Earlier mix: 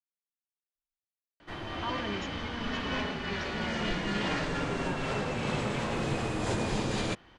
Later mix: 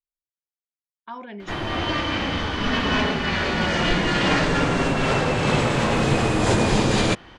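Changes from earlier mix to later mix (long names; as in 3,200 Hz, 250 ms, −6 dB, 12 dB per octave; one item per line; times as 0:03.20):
speech: entry −0.75 s
background +11.5 dB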